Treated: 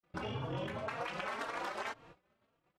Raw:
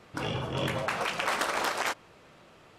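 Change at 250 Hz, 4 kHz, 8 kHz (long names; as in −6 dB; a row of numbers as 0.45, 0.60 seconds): −7.5, −13.0, −18.0 decibels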